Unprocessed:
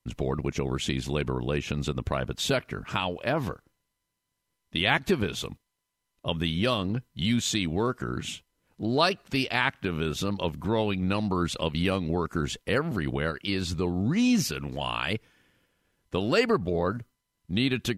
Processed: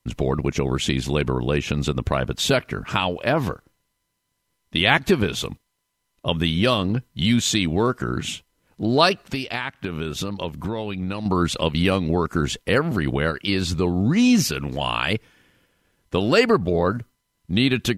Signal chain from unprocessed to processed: 9.19–11.26 compressor, threshold -30 dBFS, peak gain reduction 10.5 dB; gain +6.5 dB

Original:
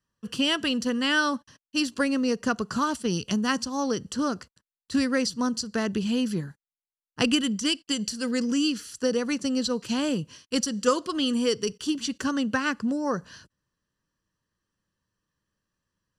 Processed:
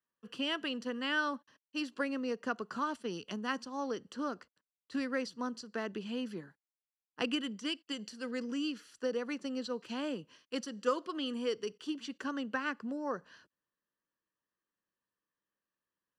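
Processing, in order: three-band isolator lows -18 dB, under 240 Hz, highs -13 dB, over 3500 Hz; gain -8 dB

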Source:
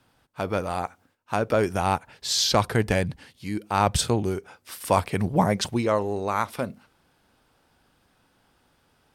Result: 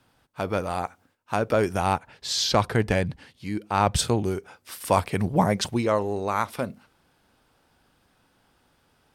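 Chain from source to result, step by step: 1.93–3.97 high shelf 7500 Hz -8 dB

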